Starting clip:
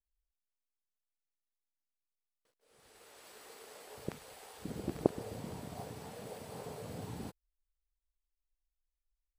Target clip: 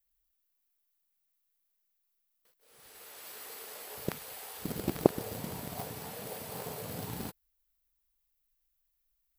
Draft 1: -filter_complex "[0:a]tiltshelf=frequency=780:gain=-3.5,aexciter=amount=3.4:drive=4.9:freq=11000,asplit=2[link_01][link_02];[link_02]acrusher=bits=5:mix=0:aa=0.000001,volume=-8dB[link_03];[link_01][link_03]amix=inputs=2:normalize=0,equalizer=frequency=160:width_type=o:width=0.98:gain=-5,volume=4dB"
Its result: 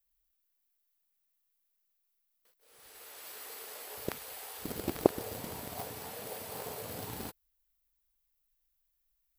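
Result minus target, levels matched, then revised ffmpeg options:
125 Hz band −4.0 dB
-filter_complex "[0:a]tiltshelf=frequency=780:gain=-3.5,aexciter=amount=3.4:drive=4.9:freq=11000,asplit=2[link_01][link_02];[link_02]acrusher=bits=5:mix=0:aa=0.000001,volume=-8dB[link_03];[link_01][link_03]amix=inputs=2:normalize=0,equalizer=frequency=160:width_type=o:width=0.98:gain=2.5,volume=4dB"

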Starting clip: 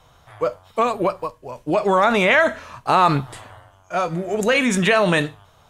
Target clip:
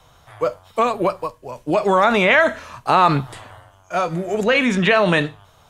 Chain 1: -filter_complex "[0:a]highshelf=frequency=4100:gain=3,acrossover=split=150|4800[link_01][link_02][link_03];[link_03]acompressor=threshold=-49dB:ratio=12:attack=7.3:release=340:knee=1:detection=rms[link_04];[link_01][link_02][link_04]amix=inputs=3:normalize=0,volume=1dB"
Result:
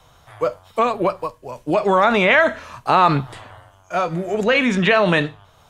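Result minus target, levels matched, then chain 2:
downward compressor: peak gain reduction +6 dB
-filter_complex "[0:a]highshelf=frequency=4100:gain=3,acrossover=split=150|4800[link_01][link_02][link_03];[link_03]acompressor=threshold=-42.5dB:ratio=12:attack=7.3:release=340:knee=1:detection=rms[link_04];[link_01][link_02][link_04]amix=inputs=3:normalize=0,volume=1dB"

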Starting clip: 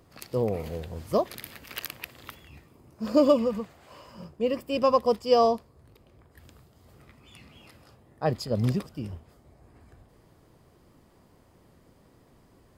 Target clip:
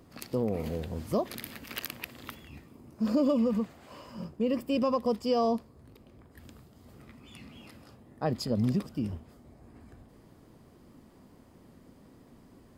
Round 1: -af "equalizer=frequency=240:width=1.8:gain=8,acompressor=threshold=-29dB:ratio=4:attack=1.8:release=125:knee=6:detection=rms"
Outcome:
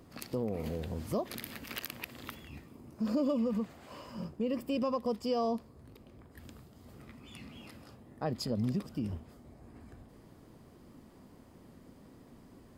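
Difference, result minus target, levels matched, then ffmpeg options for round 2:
downward compressor: peak gain reduction +5 dB
-af "equalizer=frequency=240:width=1.8:gain=8,acompressor=threshold=-22.5dB:ratio=4:attack=1.8:release=125:knee=6:detection=rms"

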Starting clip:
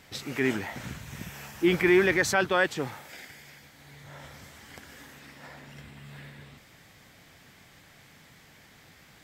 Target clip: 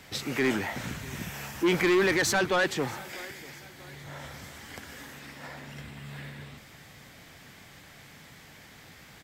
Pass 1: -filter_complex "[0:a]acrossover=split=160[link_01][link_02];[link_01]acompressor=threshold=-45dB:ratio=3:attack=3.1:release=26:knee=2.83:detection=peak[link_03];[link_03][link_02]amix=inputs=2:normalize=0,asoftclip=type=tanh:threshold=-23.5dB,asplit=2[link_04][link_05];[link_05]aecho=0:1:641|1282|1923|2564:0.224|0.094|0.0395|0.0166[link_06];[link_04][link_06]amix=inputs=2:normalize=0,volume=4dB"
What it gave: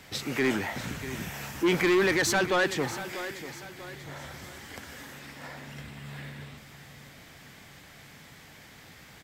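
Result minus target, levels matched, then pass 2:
echo-to-direct +8 dB
-filter_complex "[0:a]acrossover=split=160[link_01][link_02];[link_01]acompressor=threshold=-45dB:ratio=3:attack=3.1:release=26:knee=2.83:detection=peak[link_03];[link_03][link_02]amix=inputs=2:normalize=0,asoftclip=type=tanh:threshold=-23.5dB,asplit=2[link_04][link_05];[link_05]aecho=0:1:641|1282|1923:0.0891|0.0374|0.0157[link_06];[link_04][link_06]amix=inputs=2:normalize=0,volume=4dB"

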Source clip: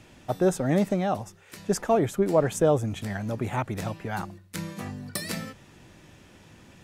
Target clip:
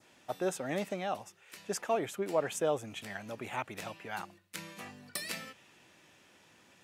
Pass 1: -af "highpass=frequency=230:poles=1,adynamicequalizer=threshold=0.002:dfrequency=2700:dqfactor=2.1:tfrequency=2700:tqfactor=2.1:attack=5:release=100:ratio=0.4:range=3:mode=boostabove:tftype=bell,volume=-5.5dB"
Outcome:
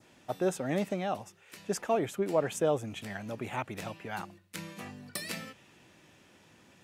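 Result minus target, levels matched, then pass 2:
250 Hz band +3.0 dB
-af "highpass=frequency=590:poles=1,adynamicequalizer=threshold=0.002:dfrequency=2700:dqfactor=2.1:tfrequency=2700:tqfactor=2.1:attack=5:release=100:ratio=0.4:range=3:mode=boostabove:tftype=bell,volume=-5.5dB"

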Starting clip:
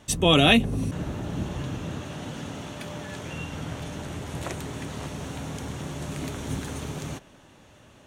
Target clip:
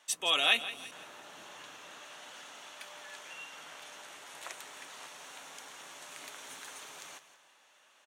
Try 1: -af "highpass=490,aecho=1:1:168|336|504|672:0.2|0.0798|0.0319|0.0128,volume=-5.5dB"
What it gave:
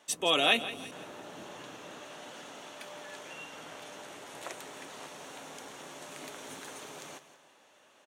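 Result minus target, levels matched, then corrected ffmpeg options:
500 Hz band +9.0 dB
-af "highpass=1000,aecho=1:1:168|336|504|672:0.2|0.0798|0.0319|0.0128,volume=-5.5dB"

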